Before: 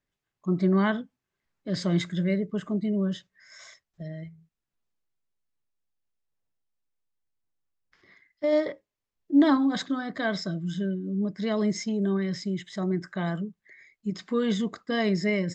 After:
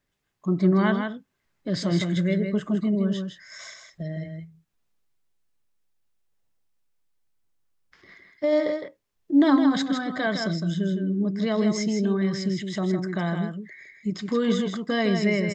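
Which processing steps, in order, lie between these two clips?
in parallel at +1 dB: compressor, threshold -37 dBFS, peak gain reduction 20.5 dB; on the sum: echo 0.16 s -6 dB

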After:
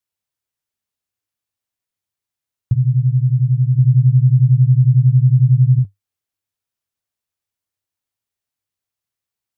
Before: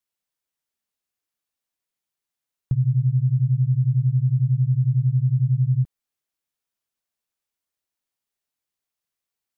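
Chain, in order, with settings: bell 99 Hz +14 dB 0.51 oct; 3.78–5.79 comb 7.1 ms, depth 53%

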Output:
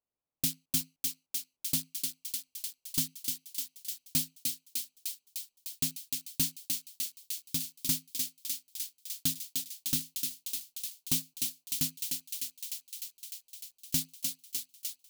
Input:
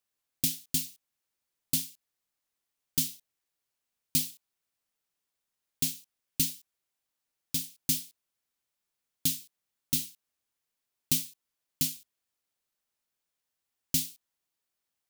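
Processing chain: Wiener smoothing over 25 samples; on a send: thinning echo 0.302 s, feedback 76%, high-pass 560 Hz, level -4.5 dB; on the sum: soft clip -18 dBFS, distortion -17 dB

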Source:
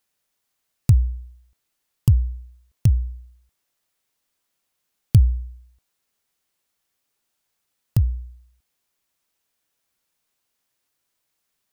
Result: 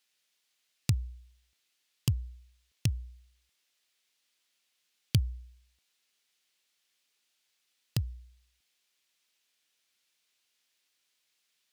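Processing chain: weighting filter D; gain -6 dB

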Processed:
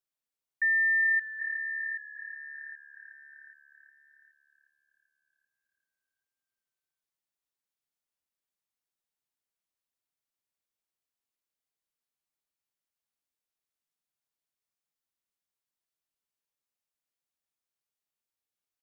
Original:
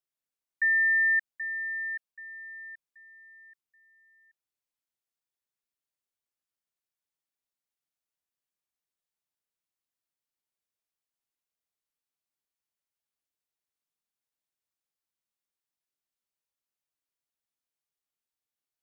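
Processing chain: frequency-shifting echo 0.385 s, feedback 62%, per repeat -36 Hz, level -15 dB; gain -1.5 dB

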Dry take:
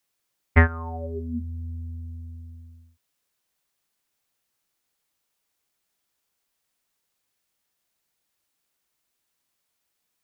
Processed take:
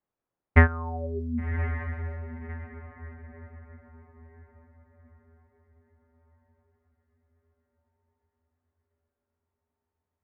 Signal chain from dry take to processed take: air absorption 74 m; diffused feedback echo 1.106 s, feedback 41%, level -11.5 dB; low-pass opened by the level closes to 1000 Hz, open at -26.5 dBFS

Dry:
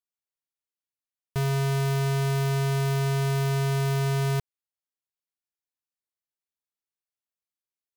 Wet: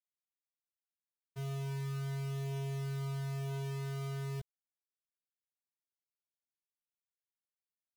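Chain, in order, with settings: expander -18 dBFS; chorus voices 4, 0.34 Hz, delay 16 ms, depth 1.1 ms

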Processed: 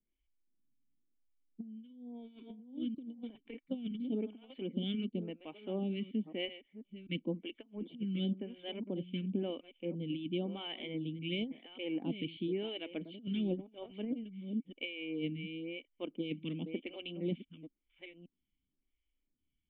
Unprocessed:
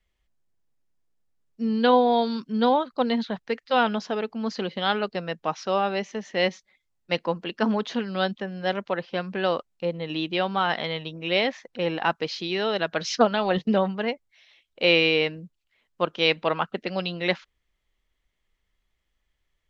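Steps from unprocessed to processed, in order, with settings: reverse delay 0.589 s, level -13 dB; dynamic EQ 1400 Hz, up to -5 dB, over -40 dBFS, Q 1.6; vocal tract filter i; negative-ratio compressor -37 dBFS, ratio -0.5; photocell phaser 0.96 Hz; gain +3 dB

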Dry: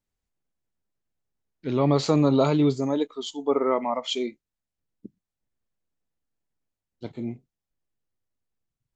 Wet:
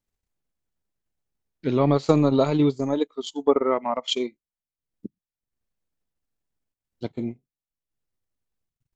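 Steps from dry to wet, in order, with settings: transient shaper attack +6 dB, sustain -10 dB

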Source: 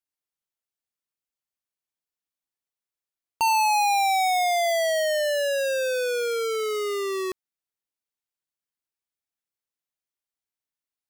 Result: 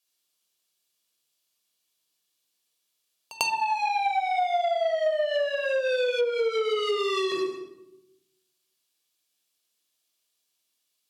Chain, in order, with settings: half-wave gain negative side -3 dB; shoebox room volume 2600 m³, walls furnished, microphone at 5.7 m; soft clip -6 dBFS, distortion -26 dB; treble ducked by the level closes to 1600 Hz, closed at -13.5 dBFS; HPF 230 Hz 12 dB/oct; resonant high shelf 2400 Hz +8 dB, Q 1.5; notch 550 Hz, Q 12; dynamic EQ 5700 Hz, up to -5 dB, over -48 dBFS, Q 1.2; compressor 5:1, threshold -30 dBFS, peak gain reduction 14 dB; pre-echo 97 ms -19 dB; gain +6 dB

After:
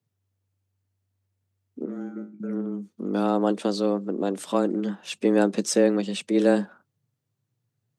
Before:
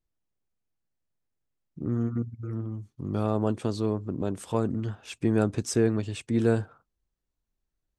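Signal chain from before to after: dynamic EQ 3900 Hz, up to +5 dB, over -53 dBFS, Q 1.1; 1.85–2.4 resonator 54 Hz, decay 0.3 s, harmonics all, mix 100%; frequency shift +96 Hz; gain +3.5 dB

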